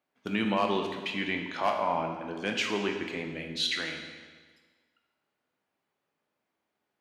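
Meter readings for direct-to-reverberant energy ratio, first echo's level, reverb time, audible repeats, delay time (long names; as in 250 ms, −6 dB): 2.5 dB, no echo audible, 1.5 s, no echo audible, no echo audible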